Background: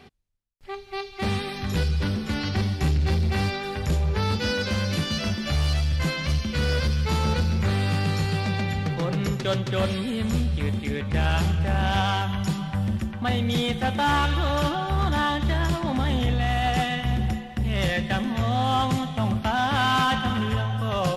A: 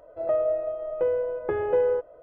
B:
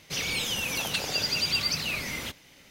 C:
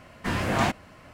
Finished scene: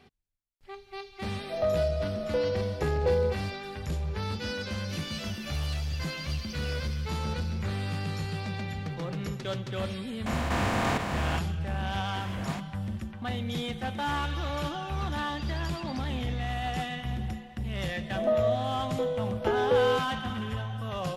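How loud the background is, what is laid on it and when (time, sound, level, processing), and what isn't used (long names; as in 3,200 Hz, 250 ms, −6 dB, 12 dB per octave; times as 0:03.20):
background −8.5 dB
0:01.33: mix in A −1 dB + parametric band 160 Hz −10 dB 2.2 octaves
0:04.78: mix in B −17.5 dB + fade-out on the ending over 0.83 s
0:10.26: mix in C −7.5 dB + compressor on every frequency bin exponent 0.2
0:11.89: mix in C −14 dB
0:14.24: mix in B −16.5 dB + high-frequency loss of the air 110 metres
0:17.98: mix in A −0.5 dB + sample-and-hold tremolo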